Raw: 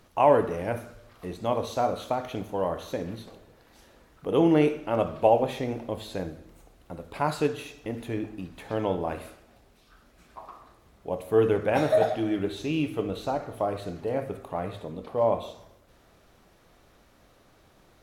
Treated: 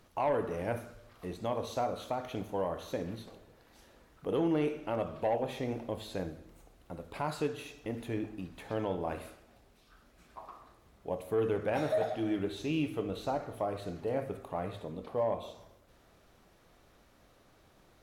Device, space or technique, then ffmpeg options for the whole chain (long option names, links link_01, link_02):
soft clipper into limiter: -af "asoftclip=type=tanh:threshold=-12.5dB,alimiter=limit=-18.5dB:level=0:latency=1:release=290,volume=-4dB"